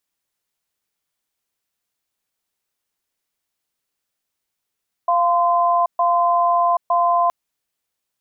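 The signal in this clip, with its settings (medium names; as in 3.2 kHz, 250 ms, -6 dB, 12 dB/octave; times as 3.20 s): cadence 695 Hz, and 1.03 kHz, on 0.78 s, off 0.13 s, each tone -16.5 dBFS 2.22 s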